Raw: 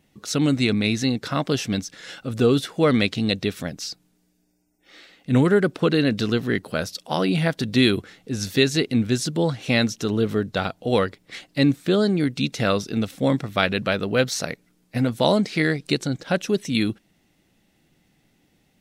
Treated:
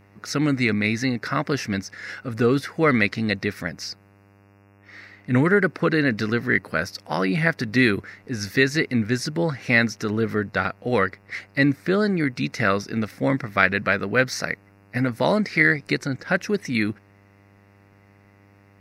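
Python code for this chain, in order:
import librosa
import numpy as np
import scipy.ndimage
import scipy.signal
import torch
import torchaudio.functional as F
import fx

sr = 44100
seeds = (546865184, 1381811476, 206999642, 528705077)

y = fx.curve_eq(x, sr, hz=(830.0, 2000.0, 3300.0, 5000.0, 7600.0, 12000.0), db=(0, 11, -10, 3, -7, -2))
y = fx.dmg_buzz(y, sr, base_hz=100.0, harmonics=28, level_db=-53.0, tilt_db=-5, odd_only=False)
y = F.gain(torch.from_numpy(y), -1.5).numpy()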